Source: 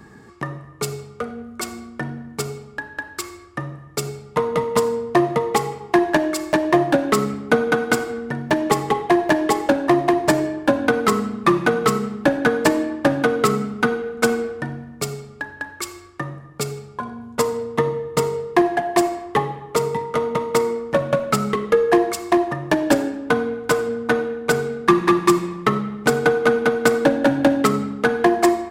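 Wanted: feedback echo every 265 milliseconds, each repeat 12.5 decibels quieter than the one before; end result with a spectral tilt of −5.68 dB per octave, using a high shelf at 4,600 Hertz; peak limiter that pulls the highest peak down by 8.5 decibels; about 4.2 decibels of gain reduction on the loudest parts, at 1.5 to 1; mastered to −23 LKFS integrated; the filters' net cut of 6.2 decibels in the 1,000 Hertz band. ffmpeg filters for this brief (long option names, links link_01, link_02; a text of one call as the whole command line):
ffmpeg -i in.wav -af "equalizer=frequency=1000:width_type=o:gain=-8.5,highshelf=frequency=4600:gain=-6.5,acompressor=threshold=-24dB:ratio=1.5,alimiter=limit=-17dB:level=0:latency=1,aecho=1:1:265|530|795:0.237|0.0569|0.0137,volume=4.5dB" out.wav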